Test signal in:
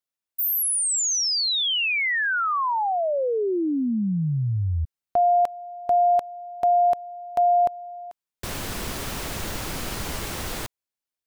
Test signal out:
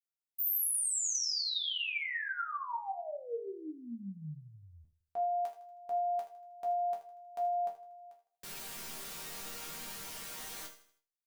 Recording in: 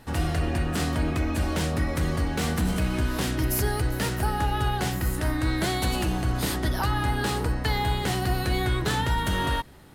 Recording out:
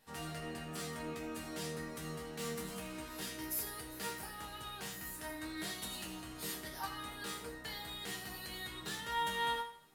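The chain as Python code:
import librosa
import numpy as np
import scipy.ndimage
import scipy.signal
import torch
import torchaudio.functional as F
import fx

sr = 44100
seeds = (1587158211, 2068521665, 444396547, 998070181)

p1 = fx.tilt_eq(x, sr, slope=2.0)
p2 = fx.resonator_bank(p1, sr, root=51, chord='major', decay_s=0.31)
y = p2 + fx.echo_feedback(p2, sr, ms=79, feedback_pct=43, wet_db=-14.0, dry=0)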